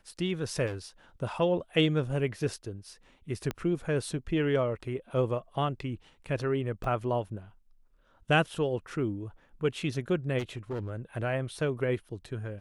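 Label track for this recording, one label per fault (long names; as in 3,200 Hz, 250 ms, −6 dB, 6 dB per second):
0.660000	0.770000	clipping −31.5 dBFS
3.510000	3.510000	click −18 dBFS
6.840000	6.840000	drop-out 3.3 ms
10.380000	10.910000	clipping −30 dBFS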